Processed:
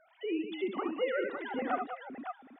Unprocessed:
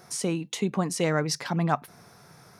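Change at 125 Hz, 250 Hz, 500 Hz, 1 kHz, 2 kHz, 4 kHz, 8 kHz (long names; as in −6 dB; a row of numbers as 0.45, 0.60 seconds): below −30 dB, −7.5 dB, −3.5 dB, −5.0 dB, −4.5 dB, −12.0 dB, below −40 dB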